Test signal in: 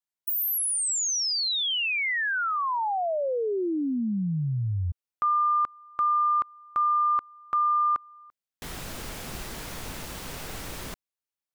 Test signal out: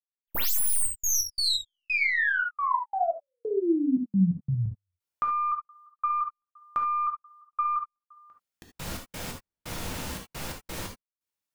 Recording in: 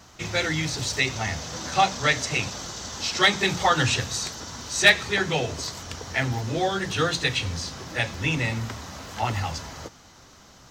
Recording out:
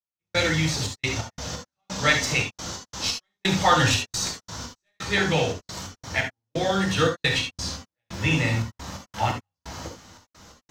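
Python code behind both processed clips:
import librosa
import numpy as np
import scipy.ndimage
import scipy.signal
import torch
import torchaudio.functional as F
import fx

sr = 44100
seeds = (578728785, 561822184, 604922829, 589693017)

y = fx.tracing_dist(x, sr, depth_ms=0.025)
y = fx.step_gate(y, sr, bpm=87, pattern='..xxx.x.x', floor_db=-60.0, edge_ms=4.5)
y = fx.rev_gated(y, sr, seeds[0], gate_ms=100, shape='flat', drr_db=1.5)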